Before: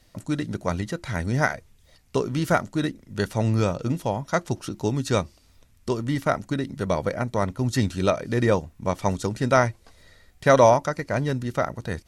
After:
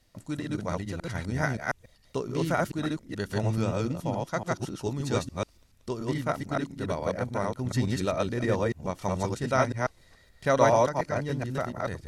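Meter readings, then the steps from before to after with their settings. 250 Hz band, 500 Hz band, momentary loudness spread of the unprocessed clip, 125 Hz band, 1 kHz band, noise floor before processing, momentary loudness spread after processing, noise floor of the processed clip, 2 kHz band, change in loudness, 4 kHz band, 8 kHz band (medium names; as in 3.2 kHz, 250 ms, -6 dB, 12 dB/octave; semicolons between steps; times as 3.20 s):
-4.5 dB, -4.5 dB, 9 LU, -4.5 dB, -4.5 dB, -58 dBFS, 8 LU, -60 dBFS, -4.5 dB, -5.0 dB, -4.5 dB, -4.5 dB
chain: chunks repeated in reverse 143 ms, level 0 dB; trim -7.5 dB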